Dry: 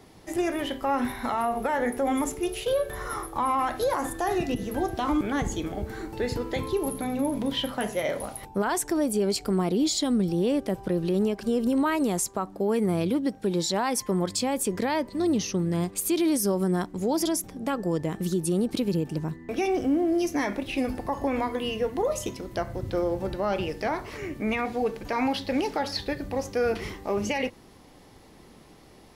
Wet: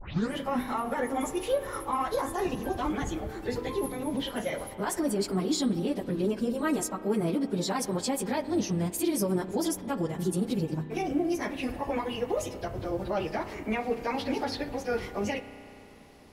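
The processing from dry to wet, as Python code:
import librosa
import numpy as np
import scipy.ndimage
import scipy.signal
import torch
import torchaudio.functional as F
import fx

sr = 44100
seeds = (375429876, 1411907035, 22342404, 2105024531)

y = fx.tape_start_head(x, sr, length_s=0.63)
y = fx.stretch_vocoder_free(y, sr, factor=0.56)
y = fx.rev_spring(y, sr, rt60_s=3.0, pass_ms=(32,), chirp_ms=70, drr_db=12.0)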